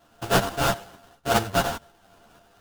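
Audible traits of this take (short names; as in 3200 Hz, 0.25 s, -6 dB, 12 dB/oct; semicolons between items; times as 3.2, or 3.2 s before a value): a buzz of ramps at a fixed pitch in blocks of 64 samples; tremolo saw up 2.1 Hz, depth 50%; aliases and images of a low sample rate 2200 Hz, jitter 20%; a shimmering, thickened sound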